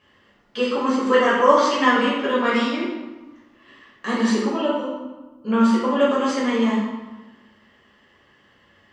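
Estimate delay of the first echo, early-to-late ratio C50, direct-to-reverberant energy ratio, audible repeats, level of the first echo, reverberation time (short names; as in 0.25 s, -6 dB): none, 1.0 dB, -9.0 dB, none, none, 1.2 s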